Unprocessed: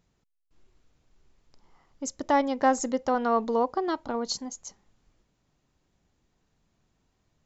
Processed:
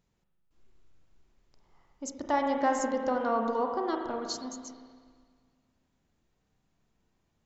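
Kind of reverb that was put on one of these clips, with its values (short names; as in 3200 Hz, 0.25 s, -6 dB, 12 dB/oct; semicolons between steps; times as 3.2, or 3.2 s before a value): spring tank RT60 1.8 s, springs 31/40 ms, chirp 80 ms, DRR 2 dB; gain -5 dB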